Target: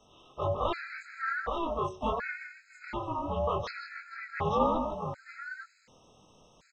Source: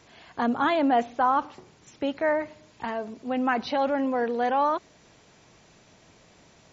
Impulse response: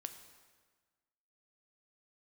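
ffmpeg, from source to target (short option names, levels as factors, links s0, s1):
-filter_complex "[0:a]aeval=exprs='val(0)*sin(2*PI*330*n/s)':c=same,acrossover=split=120[s0][s1];[s0]alimiter=level_in=3.16:limit=0.0631:level=0:latency=1,volume=0.316[s2];[s2][s1]amix=inputs=2:normalize=0,flanger=delay=19:depth=5:speed=1.9,bandreject=f=185.4:t=h:w=4,bandreject=f=370.8:t=h:w=4,asplit=2[s3][s4];[s4]asetrate=52444,aresample=44100,atempo=0.840896,volume=0.251[s5];[s3][s5]amix=inputs=2:normalize=0,asplit=2[s6][s7];[s7]aecho=0:1:159|460|862:0.376|0.126|0.596[s8];[s6][s8]amix=inputs=2:normalize=0,afftfilt=real='re*gt(sin(2*PI*0.68*pts/sr)*(1-2*mod(floor(b*sr/1024/1300),2)),0)':imag='im*gt(sin(2*PI*0.68*pts/sr)*(1-2*mod(floor(b*sr/1024/1300),2)),0)':win_size=1024:overlap=0.75,volume=1.12"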